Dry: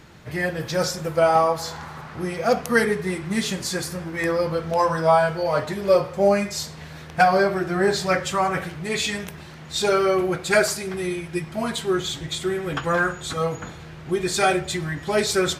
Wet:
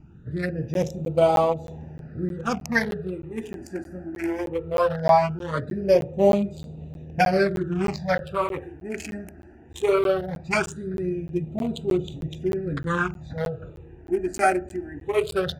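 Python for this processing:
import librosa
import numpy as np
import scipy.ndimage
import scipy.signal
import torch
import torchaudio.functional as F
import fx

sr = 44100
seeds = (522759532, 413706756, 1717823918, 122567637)

y = fx.wiener(x, sr, points=41)
y = fx.phaser_stages(y, sr, stages=8, low_hz=140.0, high_hz=1700.0, hz=0.19, feedback_pct=5)
y = fx.buffer_crackle(y, sr, first_s=0.74, period_s=0.31, block=512, kind='zero')
y = y * 10.0 ** (2.5 / 20.0)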